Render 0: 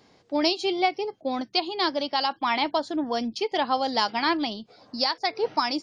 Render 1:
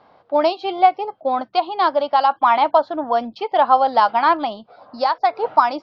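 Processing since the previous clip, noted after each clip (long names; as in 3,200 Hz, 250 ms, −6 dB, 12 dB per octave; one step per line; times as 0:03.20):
low-pass filter 3,900 Hz 24 dB per octave
flat-topped bell 890 Hz +12.5 dB
level −1 dB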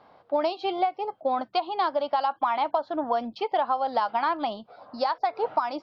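downward compressor 10 to 1, threshold −18 dBFS, peak gain reduction 11.5 dB
level −3 dB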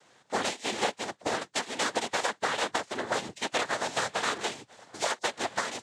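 compressing power law on the bin magnitudes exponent 0.41
cochlear-implant simulation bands 6
level −4 dB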